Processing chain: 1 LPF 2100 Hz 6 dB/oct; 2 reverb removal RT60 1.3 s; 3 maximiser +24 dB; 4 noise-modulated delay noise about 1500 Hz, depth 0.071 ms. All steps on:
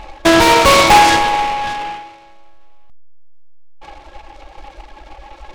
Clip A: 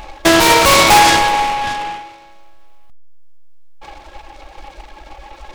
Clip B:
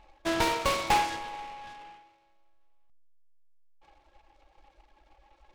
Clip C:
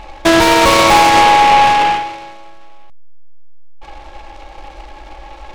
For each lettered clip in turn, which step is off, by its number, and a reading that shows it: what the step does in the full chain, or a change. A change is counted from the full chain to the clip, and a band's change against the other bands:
1, 8 kHz band +4.5 dB; 3, crest factor change +6.0 dB; 2, 1 kHz band +2.5 dB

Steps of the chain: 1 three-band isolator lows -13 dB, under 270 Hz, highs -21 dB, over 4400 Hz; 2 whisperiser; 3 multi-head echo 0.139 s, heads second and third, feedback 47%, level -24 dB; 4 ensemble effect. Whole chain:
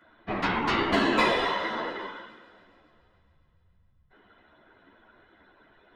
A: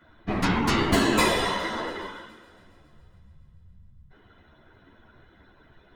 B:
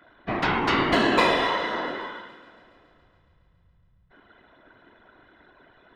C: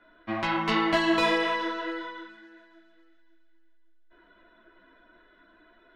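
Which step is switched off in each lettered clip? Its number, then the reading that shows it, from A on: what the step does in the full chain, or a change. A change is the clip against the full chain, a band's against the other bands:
1, loudness change +2.0 LU; 4, loudness change +3.0 LU; 2, 125 Hz band -2.0 dB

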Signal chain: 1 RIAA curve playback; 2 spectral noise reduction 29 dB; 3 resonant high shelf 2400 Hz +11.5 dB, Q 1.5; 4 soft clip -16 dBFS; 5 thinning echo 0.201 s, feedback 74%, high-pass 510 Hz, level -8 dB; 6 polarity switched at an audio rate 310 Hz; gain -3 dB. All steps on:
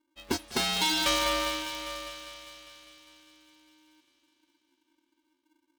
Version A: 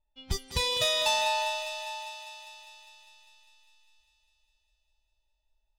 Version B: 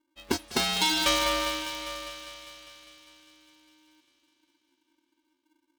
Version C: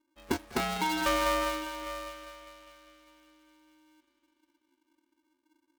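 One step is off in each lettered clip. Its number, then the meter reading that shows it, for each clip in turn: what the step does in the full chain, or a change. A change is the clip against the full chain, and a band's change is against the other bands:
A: 6, momentary loudness spread change +1 LU; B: 4, distortion -17 dB; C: 3, 4 kHz band -10.0 dB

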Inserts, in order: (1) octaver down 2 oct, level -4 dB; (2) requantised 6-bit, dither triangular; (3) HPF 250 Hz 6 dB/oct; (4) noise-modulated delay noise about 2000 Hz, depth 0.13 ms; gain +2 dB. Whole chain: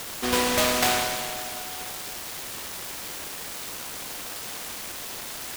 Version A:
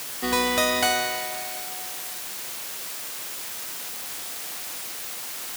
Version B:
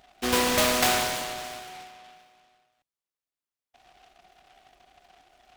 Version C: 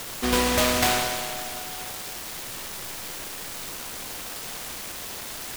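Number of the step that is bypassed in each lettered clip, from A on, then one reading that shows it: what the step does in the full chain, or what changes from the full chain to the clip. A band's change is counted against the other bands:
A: 4, 125 Hz band -6.0 dB; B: 2, distortion -4 dB; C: 3, 125 Hz band +4.5 dB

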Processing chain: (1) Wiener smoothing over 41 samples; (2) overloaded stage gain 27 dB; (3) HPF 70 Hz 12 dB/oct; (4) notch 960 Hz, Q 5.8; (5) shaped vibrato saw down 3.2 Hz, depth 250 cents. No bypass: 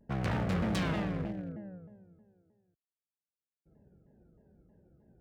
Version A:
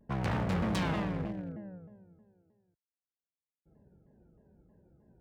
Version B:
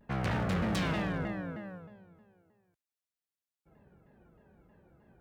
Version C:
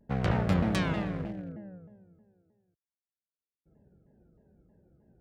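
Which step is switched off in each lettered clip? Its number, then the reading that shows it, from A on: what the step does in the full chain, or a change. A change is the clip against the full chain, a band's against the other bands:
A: 4, 1 kHz band +2.0 dB; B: 1, 125 Hz band -2.0 dB; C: 2, distortion -7 dB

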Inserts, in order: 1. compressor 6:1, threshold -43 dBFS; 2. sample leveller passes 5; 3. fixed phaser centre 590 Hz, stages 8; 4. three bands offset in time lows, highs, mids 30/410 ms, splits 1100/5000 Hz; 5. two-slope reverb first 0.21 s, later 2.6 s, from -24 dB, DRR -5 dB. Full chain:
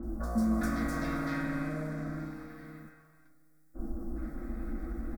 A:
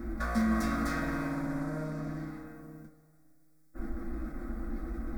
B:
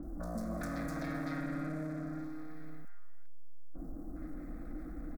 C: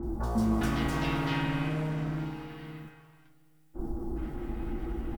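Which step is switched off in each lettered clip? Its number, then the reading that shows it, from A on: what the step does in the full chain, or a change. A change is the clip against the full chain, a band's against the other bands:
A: 4, echo-to-direct 11.0 dB to 5.0 dB; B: 5, echo-to-direct 11.0 dB to 3.5 dB; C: 3, momentary loudness spread change -3 LU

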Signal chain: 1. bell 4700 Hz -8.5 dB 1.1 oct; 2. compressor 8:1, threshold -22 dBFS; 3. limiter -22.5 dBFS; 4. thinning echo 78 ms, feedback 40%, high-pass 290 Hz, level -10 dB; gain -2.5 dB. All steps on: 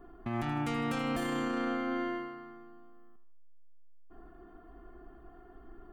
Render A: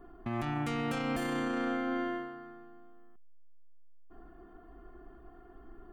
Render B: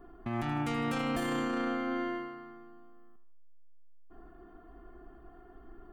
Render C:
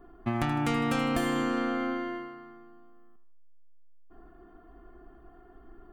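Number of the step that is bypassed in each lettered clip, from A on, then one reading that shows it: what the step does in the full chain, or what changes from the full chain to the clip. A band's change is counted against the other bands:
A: 4, crest factor change -2.0 dB; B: 2, momentary loudness spread change -3 LU; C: 3, crest factor change +5.5 dB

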